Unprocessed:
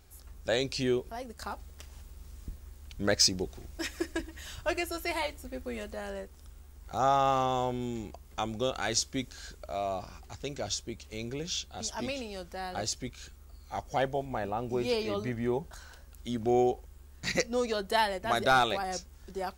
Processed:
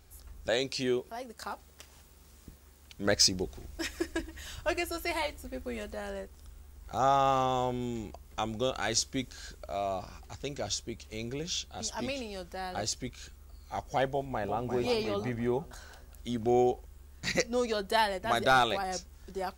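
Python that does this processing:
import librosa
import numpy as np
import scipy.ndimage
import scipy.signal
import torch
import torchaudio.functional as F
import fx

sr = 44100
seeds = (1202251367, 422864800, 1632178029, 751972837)

y = fx.highpass(x, sr, hz=200.0, slope=6, at=(0.49, 3.06))
y = fx.echo_throw(y, sr, start_s=14.08, length_s=0.6, ms=350, feedback_pct=45, wet_db=-7.5)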